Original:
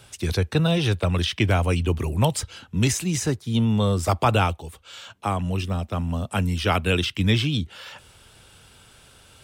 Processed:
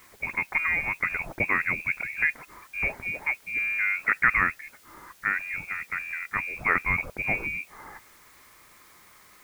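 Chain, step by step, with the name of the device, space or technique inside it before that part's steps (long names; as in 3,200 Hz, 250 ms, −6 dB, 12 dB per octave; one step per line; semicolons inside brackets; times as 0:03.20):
scrambled radio voice (band-pass filter 300–2,700 Hz; voice inversion scrambler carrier 2,600 Hz; white noise bed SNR 27 dB)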